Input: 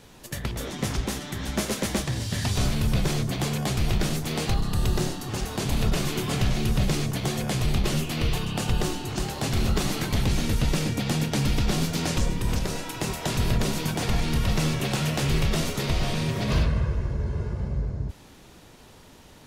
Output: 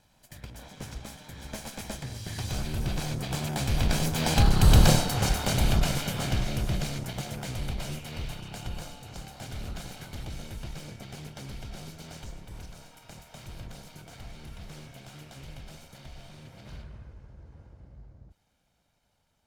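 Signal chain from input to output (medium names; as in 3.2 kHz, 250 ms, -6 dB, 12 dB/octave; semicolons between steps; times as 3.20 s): comb filter that takes the minimum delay 1.3 ms; Doppler pass-by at 4.87 s, 9 m/s, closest 3.7 m; trim +8.5 dB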